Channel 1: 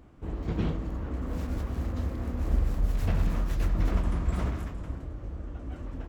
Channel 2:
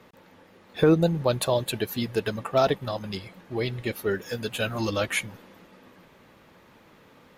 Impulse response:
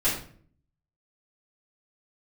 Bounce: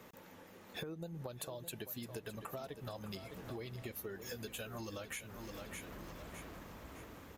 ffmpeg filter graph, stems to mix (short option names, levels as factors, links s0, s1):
-filter_complex "[0:a]highpass=f=320:p=1,asoftclip=type=hard:threshold=0.0106,adelay=1950,volume=0.282,asplit=2[s0][s1];[s1]volume=0.668[s2];[1:a]acompressor=threshold=0.0447:ratio=6,aexciter=amount=1.4:drive=8.5:freq=5900,volume=0.708,asplit=2[s3][s4];[s4]volume=0.211[s5];[s2][s5]amix=inputs=2:normalize=0,aecho=0:1:610|1220|1830|2440|3050:1|0.37|0.137|0.0507|0.0187[s6];[s0][s3][s6]amix=inputs=3:normalize=0,acompressor=threshold=0.00708:ratio=5"